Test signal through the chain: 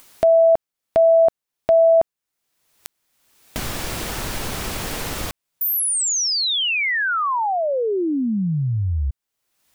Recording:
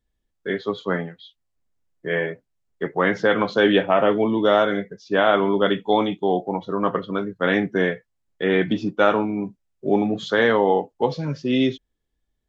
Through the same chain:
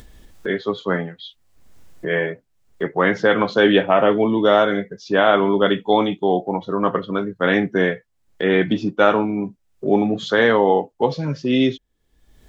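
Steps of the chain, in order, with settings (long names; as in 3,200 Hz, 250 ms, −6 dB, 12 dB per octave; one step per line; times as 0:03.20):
upward compression, threshold −25 dBFS
level +2.5 dB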